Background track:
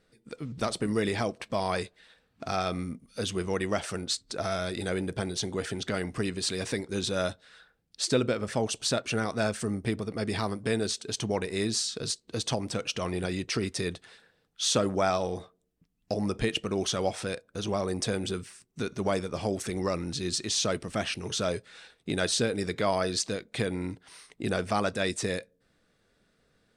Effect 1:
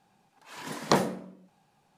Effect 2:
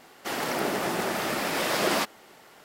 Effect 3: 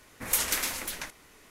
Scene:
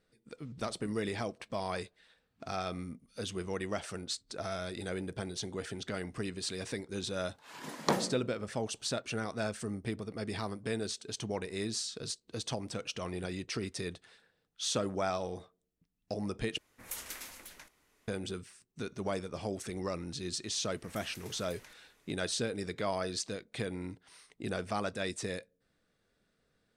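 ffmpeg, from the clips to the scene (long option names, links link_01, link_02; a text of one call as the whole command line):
ffmpeg -i bed.wav -i cue0.wav -i cue1.wav -i cue2.wav -filter_complex "[3:a]asplit=2[link_01][link_02];[0:a]volume=-7dB[link_03];[link_02]acompressor=threshold=-44dB:ratio=5:attack=31:release=67:knee=1:detection=peak[link_04];[link_03]asplit=2[link_05][link_06];[link_05]atrim=end=16.584[link_07];[link_01]atrim=end=1.5,asetpts=PTS-STARTPTS,volume=-15dB[link_08];[link_06]atrim=start=18.076[link_09];[1:a]atrim=end=1.97,asetpts=PTS-STARTPTS,volume=-6dB,afade=type=in:duration=0.004:curve=hsin,afade=type=out:start_time=1.966:duration=0.004:curve=hsin,adelay=6970[link_10];[link_04]atrim=end=1.5,asetpts=PTS-STARTPTS,volume=-13.5dB,afade=type=in:duration=0.004:curve=hsin,afade=type=out:start_time=1.496:duration=0.004:curve=hsin,adelay=20630[link_11];[link_07][link_08]acrossfade=duration=0.004:curve1=hsin:curve2=hsin[link_12];[link_12][link_09]acrossfade=duration=0.004:curve1=hsin:curve2=hsin[link_13];[link_13][link_10][link_11]amix=inputs=3:normalize=0" out.wav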